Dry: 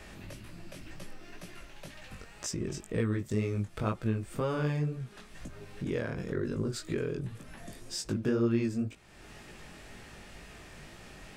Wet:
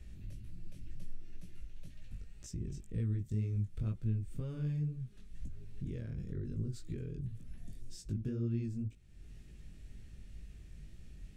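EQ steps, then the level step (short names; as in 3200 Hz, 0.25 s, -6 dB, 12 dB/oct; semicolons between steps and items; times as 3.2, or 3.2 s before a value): passive tone stack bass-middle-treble 10-0-1; low shelf 210 Hz +5 dB; notch 4900 Hz, Q 20; +6.5 dB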